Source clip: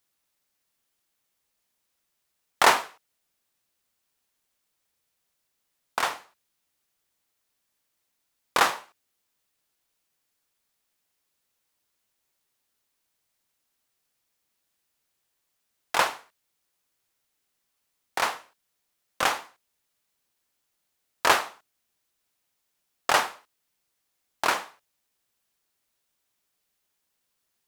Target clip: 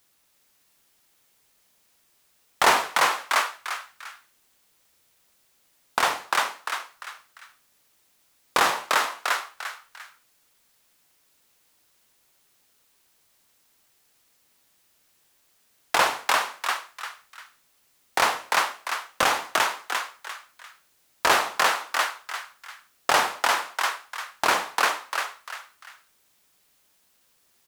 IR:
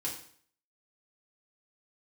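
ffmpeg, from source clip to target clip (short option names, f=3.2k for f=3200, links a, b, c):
-filter_complex "[0:a]acontrast=58,asplit=2[a][b];[b]asplit=4[c][d][e][f];[c]adelay=347,afreqshift=110,volume=-5dB[g];[d]adelay=694,afreqshift=220,volume=-14.4dB[h];[e]adelay=1041,afreqshift=330,volume=-23.7dB[i];[f]adelay=1388,afreqshift=440,volume=-33.1dB[j];[g][h][i][j]amix=inputs=4:normalize=0[k];[a][k]amix=inputs=2:normalize=0,alimiter=limit=-13.5dB:level=0:latency=1:release=240,volume=5dB"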